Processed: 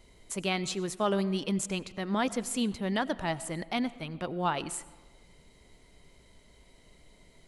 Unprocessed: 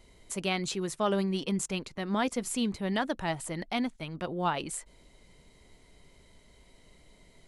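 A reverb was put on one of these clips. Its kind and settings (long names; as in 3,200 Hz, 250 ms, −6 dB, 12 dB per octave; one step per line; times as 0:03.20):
comb and all-pass reverb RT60 1.3 s, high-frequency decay 0.55×, pre-delay 55 ms, DRR 17.5 dB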